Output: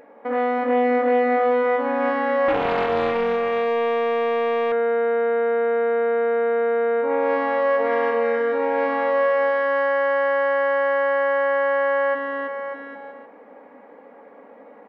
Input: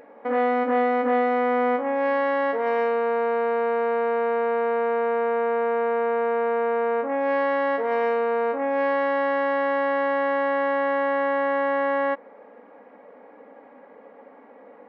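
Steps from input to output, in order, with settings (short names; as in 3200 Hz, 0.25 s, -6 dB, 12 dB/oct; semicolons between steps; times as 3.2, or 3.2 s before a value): bouncing-ball echo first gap 0.33 s, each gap 0.8×, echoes 5; 2.48–4.72 Doppler distortion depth 0.46 ms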